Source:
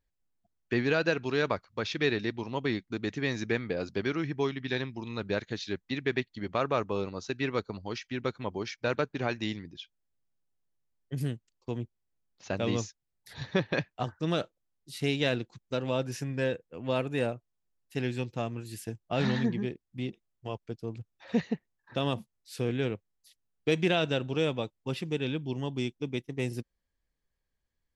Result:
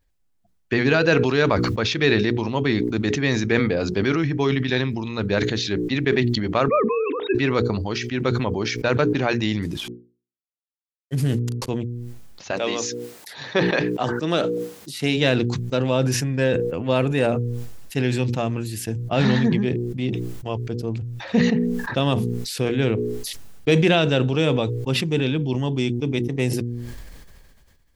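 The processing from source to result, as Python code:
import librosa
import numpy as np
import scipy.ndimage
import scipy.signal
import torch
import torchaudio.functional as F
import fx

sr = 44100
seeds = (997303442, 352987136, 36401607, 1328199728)

y = fx.sine_speech(x, sr, at=(6.68, 7.35))
y = fx.cvsd(y, sr, bps=64000, at=(9.62, 11.69))
y = fx.highpass(y, sr, hz=fx.line((12.5, 480.0), (15.16, 160.0)), slope=12, at=(12.5, 15.16), fade=0.02)
y = fx.low_shelf(y, sr, hz=200.0, db=3.5)
y = fx.hum_notches(y, sr, base_hz=60, count=8)
y = fx.sustainer(y, sr, db_per_s=28.0)
y = F.gain(torch.from_numpy(y), 8.0).numpy()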